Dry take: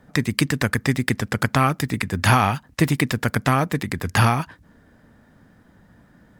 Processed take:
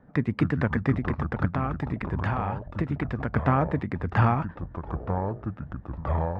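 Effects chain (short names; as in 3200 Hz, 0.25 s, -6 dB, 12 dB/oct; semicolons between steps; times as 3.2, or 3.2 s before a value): LPF 1400 Hz 12 dB/oct; 0.93–3.33 compressor 5:1, threshold -22 dBFS, peak gain reduction 9.5 dB; echoes that change speed 0.179 s, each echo -6 st, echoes 3, each echo -6 dB; gain -3 dB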